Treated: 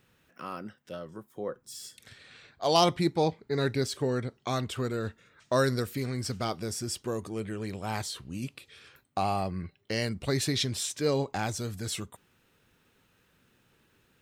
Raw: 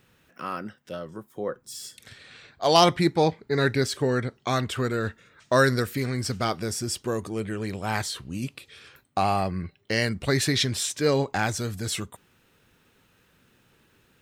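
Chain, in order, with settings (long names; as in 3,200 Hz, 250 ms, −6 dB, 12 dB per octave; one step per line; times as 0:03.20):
dynamic equaliser 1,700 Hz, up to −6 dB, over −42 dBFS, Q 1.8
level −4.5 dB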